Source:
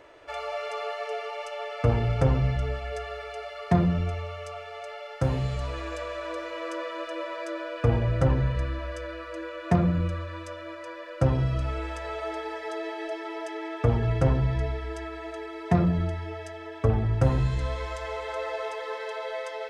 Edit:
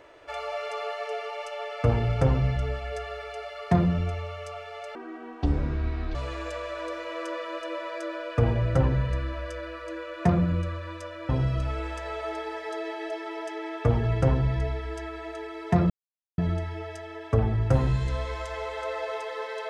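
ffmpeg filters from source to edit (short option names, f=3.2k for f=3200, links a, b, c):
-filter_complex "[0:a]asplit=5[a][b][c][d][e];[a]atrim=end=4.954[f];[b]atrim=start=4.95:end=5.61,asetpts=PTS-STARTPTS,asetrate=24255,aresample=44100[g];[c]atrim=start=5.606:end=10.752[h];[d]atrim=start=11.278:end=15.89,asetpts=PTS-STARTPTS,afade=t=out:st=4.608:d=0.004:c=hsin,apad=pad_dur=0.48[i];[e]atrim=start=15.89,asetpts=PTS-STARTPTS,afade=t=in:d=0.004:c=hsin[j];[f][g]acrossfade=d=0.004:c1=hsin:c2=hsin[k];[k][h]acrossfade=d=0.004:c1=hsin:c2=hsin[l];[i][j]concat=n=2:v=0:a=1[m];[l][m]acrossfade=d=0.004:c1=hsin:c2=hsin"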